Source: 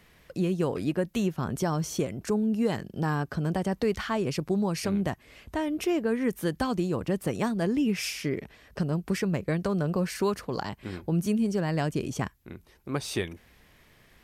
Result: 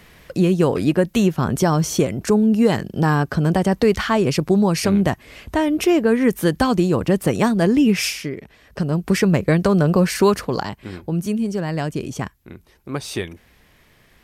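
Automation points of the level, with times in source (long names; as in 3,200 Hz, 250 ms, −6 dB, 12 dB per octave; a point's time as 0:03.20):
0:08.05 +10.5 dB
0:08.35 0 dB
0:09.21 +11.5 dB
0:10.41 +11.5 dB
0:10.83 +4 dB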